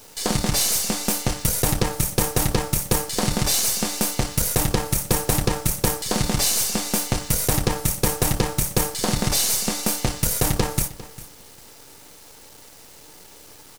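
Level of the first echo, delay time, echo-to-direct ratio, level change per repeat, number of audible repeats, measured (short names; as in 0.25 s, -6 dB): -17.5 dB, 0.401 s, -17.5 dB, -15.5 dB, 2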